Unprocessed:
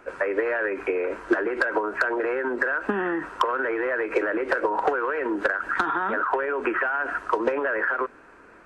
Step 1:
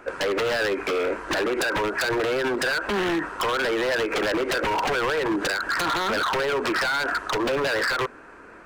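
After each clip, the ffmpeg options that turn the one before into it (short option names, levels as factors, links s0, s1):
-af "aeval=exprs='0.0668*(abs(mod(val(0)/0.0668+3,4)-2)-1)':c=same,volume=1.68"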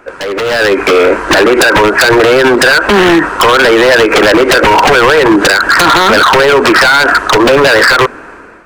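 -af "dynaudnorm=f=230:g=5:m=3.98,volume=2"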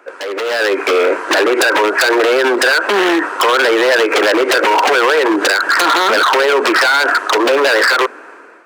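-af "highpass=f=310:w=0.5412,highpass=f=310:w=1.3066,volume=0.531"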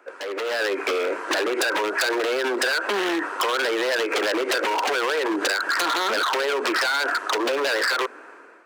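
-filter_complex "[0:a]acrossover=split=180|3000[s0][s1][s2];[s1]acompressor=threshold=0.224:ratio=6[s3];[s0][s3][s2]amix=inputs=3:normalize=0,volume=0.398"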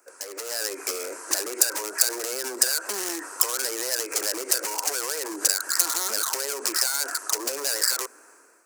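-af "aexciter=amount=9.7:drive=8.7:freq=5200,volume=0.299"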